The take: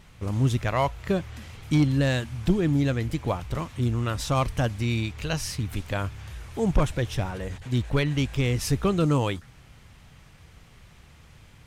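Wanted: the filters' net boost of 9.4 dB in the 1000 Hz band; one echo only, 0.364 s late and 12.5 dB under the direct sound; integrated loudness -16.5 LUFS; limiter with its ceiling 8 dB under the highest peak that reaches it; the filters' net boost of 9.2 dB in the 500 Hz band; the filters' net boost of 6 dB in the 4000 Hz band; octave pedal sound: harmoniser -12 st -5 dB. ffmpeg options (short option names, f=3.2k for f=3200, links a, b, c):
-filter_complex "[0:a]equalizer=f=500:t=o:g=9,equalizer=f=1k:t=o:g=8.5,equalizer=f=4k:t=o:g=7,alimiter=limit=-12dB:level=0:latency=1,aecho=1:1:364:0.237,asplit=2[a][b];[b]asetrate=22050,aresample=44100,atempo=2,volume=-5dB[c];[a][c]amix=inputs=2:normalize=0,volume=6.5dB"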